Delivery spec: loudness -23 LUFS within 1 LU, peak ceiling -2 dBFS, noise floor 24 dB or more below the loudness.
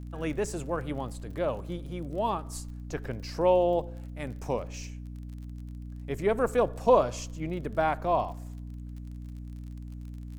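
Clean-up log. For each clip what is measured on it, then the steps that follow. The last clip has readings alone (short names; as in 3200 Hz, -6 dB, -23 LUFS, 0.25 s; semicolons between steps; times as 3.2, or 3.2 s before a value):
ticks 38/s; hum 60 Hz; harmonics up to 300 Hz; hum level -38 dBFS; loudness -29.5 LUFS; peak -10.0 dBFS; loudness target -23.0 LUFS
-> de-click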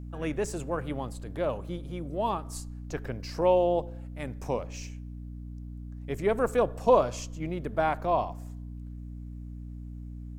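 ticks 0.19/s; hum 60 Hz; harmonics up to 300 Hz; hum level -38 dBFS
-> de-hum 60 Hz, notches 5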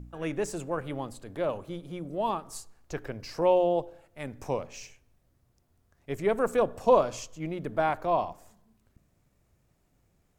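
hum none; loudness -29.5 LUFS; peak -9.5 dBFS; loudness target -23.0 LUFS
-> gain +6.5 dB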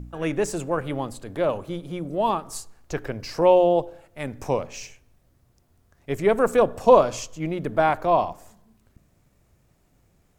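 loudness -23.0 LUFS; peak -3.0 dBFS; noise floor -64 dBFS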